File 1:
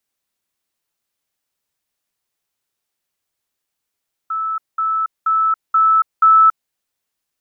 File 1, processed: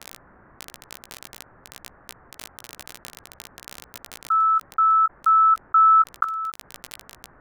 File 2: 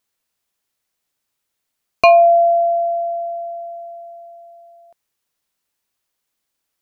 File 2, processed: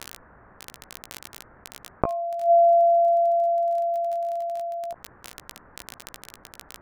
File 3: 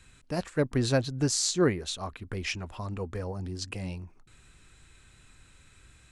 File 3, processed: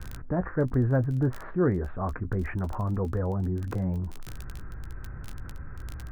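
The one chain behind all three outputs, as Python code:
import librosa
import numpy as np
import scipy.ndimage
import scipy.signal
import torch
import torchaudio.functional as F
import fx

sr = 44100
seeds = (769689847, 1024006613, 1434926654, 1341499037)

y = scipy.signal.sosfilt(scipy.signal.butter(8, 1700.0, 'lowpass', fs=sr, output='sos'), x)
y = fx.low_shelf(y, sr, hz=170.0, db=7.5)
y = fx.gate_flip(y, sr, shuts_db=-8.0, range_db=-31)
y = fx.dmg_crackle(y, sr, seeds[0], per_s=17.0, level_db=-38.0)
y = fx.doubler(y, sr, ms=16.0, db=-13.0)
y = fx.env_flatten(y, sr, amount_pct=50)
y = F.gain(torch.from_numpy(y), -3.0).numpy()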